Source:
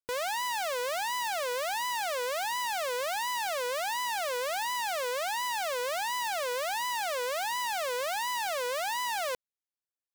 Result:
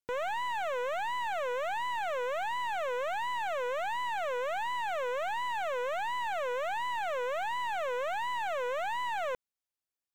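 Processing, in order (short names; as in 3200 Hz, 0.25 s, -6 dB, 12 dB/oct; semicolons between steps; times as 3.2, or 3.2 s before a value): slew limiter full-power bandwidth 59 Hz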